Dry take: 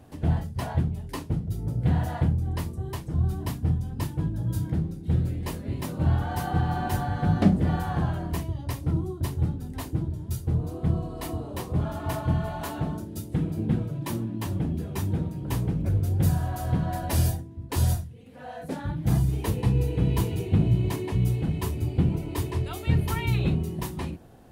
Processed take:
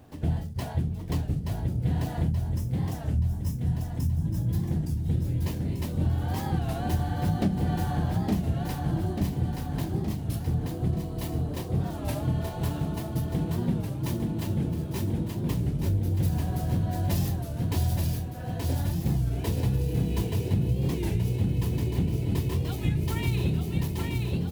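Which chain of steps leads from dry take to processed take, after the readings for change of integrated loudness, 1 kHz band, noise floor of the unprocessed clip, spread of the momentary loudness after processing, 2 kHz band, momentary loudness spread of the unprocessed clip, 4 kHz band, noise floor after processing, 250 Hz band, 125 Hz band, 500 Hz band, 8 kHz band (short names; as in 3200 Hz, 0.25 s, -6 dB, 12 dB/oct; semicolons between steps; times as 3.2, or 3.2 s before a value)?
-1.0 dB, -3.5 dB, -41 dBFS, 4 LU, -3.0 dB, 8 LU, 0.0 dB, -35 dBFS, -1.0 dB, -1.0 dB, -1.5 dB, -2.5 dB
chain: median filter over 5 samples; high shelf 5600 Hz +9 dB; spectral gain 2.32–4.26, 260–5000 Hz -14 dB; dynamic EQ 1200 Hz, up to -7 dB, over -49 dBFS, Q 1.1; feedback echo 0.877 s, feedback 58%, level -4 dB; compressor, threshold -20 dBFS, peak gain reduction 8 dB; record warp 33 1/3 rpm, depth 160 cents; gain -1 dB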